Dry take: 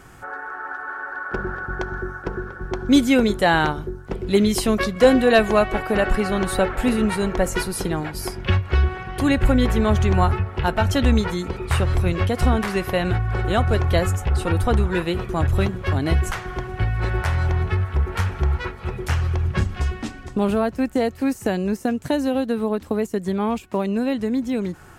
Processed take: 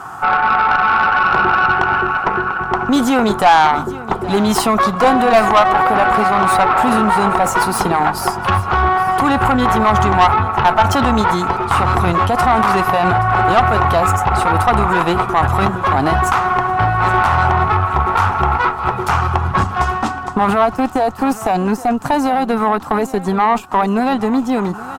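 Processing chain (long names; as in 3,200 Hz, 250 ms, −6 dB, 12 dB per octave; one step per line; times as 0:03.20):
stylus tracing distortion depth 0.025 ms
high-pass filter 100 Hz 12 dB per octave
flat-topped bell 990 Hz +15.5 dB 1.2 octaves
notch filter 2,200 Hz, Q 16
in parallel at −1 dB: compressor whose output falls as the input rises −19 dBFS, ratio −0.5
on the sum: tube saturation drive 6 dB, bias 0.45
on a send: repeating echo 823 ms, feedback 29%, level −17 dB
on the sum: level +1.5 dB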